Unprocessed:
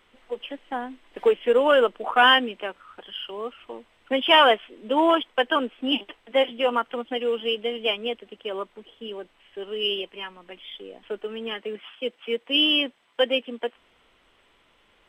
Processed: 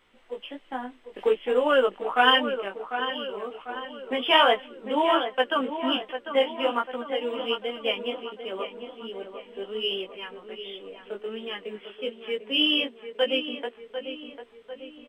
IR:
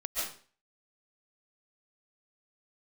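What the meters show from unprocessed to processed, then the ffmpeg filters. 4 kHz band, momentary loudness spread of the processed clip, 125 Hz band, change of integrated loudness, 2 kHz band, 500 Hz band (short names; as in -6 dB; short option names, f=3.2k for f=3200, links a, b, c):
-2.5 dB, 18 LU, n/a, -3.0 dB, -3.0 dB, -2.5 dB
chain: -filter_complex "[0:a]flanger=delay=15.5:depth=4.8:speed=1.3,asplit=2[a][b];[b]adelay=747,lowpass=f=2.4k:p=1,volume=-9dB,asplit=2[c][d];[d]adelay=747,lowpass=f=2.4k:p=1,volume=0.53,asplit=2[e][f];[f]adelay=747,lowpass=f=2.4k:p=1,volume=0.53,asplit=2[g][h];[h]adelay=747,lowpass=f=2.4k:p=1,volume=0.53,asplit=2[i][j];[j]adelay=747,lowpass=f=2.4k:p=1,volume=0.53,asplit=2[k][l];[l]adelay=747,lowpass=f=2.4k:p=1,volume=0.53[m];[a][c][e][g][i][k][m]amix=inputs=7:normalize=0"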